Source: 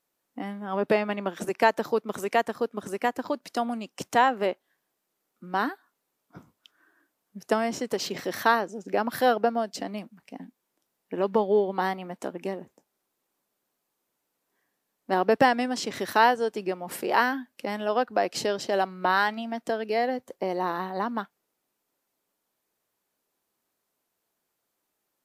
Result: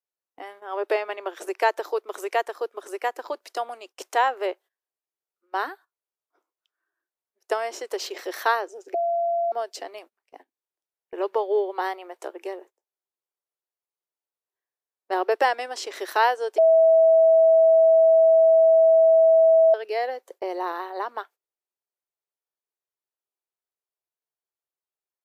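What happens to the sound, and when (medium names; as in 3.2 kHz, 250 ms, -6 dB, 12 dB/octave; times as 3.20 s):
8.94–9.52 s: bleep 683 Hz -20.5 dBFS
16.58–19.74 s: bleep 650 Hz -12 dBFS
whole clip: elliptic high-pass 360 Hz, stop band 50 dB; gate -47 dBFS, range -18 dB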